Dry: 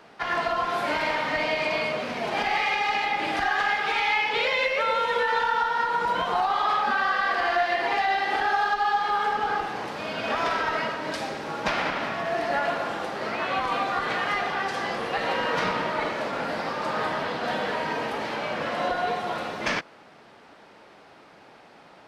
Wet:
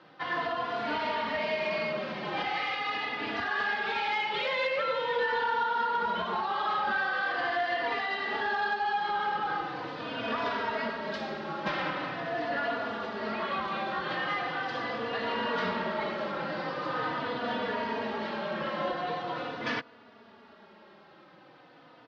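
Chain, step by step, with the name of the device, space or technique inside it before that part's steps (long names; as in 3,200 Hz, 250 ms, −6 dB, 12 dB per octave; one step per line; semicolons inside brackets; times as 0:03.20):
barber-pole flanger into a guitar amplifier (barber-pole flanger 3.4 ms −0.42 Hz; soft clipping −20.5 dBFS, distortion −19 dB; loudspeaker in its box 90–4,500 Hz, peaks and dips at 220 Hz +4 dB, 750 Hz −4 dB, 2,300 Hz −5 dB)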